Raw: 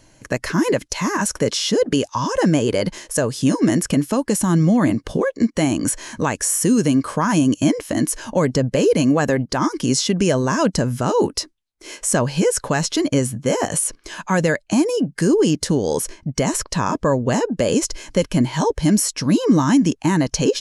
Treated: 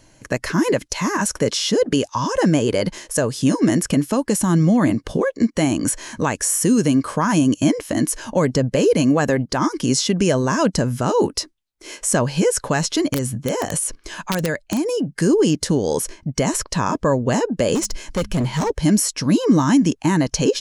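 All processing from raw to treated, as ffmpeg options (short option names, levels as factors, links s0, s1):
-filter_complex "[0:a]asettb=1/sr,asplit=3[s0][s1][s2];[s0]atrim=end=13.114[s3];[s1]atrim=start=13.11:end=15.12,asetpts=PTS-STARTPTS,afade=t=in:d=0.004:c=qsin,afade=t=out:st=2.006:d=0.004:c=qsin,lowshelf=f=87:g=6,acompressor=threshold=0.126:ratio=3:attack=3.2:release=140:knee=1:detection=peak,aeval=exprs='(mod(3.76*val(0)+1,2)-1)/3.76':c=same[s4];[s2]atrim=start=15.116[s5];[s3][s4]acrossfade=d=0.004:c1=hsin:c2=qsin[s6];[s6][s5]acrossfade=d=0.004:c1=qsin:c2=hsin,asettb=1/sr,asplit=3[s7][s8][s9];[s7]atrim=end=17.754[s10];[s8]atrim=start=17.75:end=18.7,asetpts=PTS-STARTPTS,afade=t=in:d=0.004:c=qsin,afade=t=out:st=0.946:d=0.004:c=qsin,bandreject=f=103:t=h:w=4,bandreject=f=206:t=h:w=4,asubboost=boost=10:cutoff=140,volume=6.68,asoftclip=hard,volume=0.15[s11];[s9]atrim=start=18.696[s12];[s10][s11]acrossfade=d=0.004:c1=hsin:c2=qsin[s13];[s13][s12]acrossfade=d=0.004:c1=qsin:c2=hsin"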